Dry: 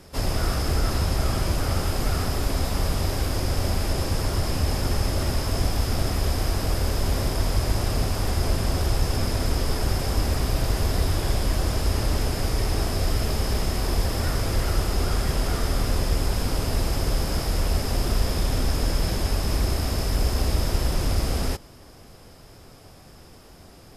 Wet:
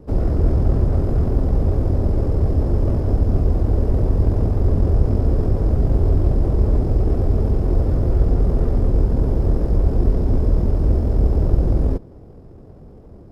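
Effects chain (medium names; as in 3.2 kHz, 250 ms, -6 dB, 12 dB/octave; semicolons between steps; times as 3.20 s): FFT filter 450 Hz 0 dB, 2.2 kHz -26 dB, 8.7 kHz -29 dB; tempo 1.8×; sliding maximum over 9 samples; trim +8 dB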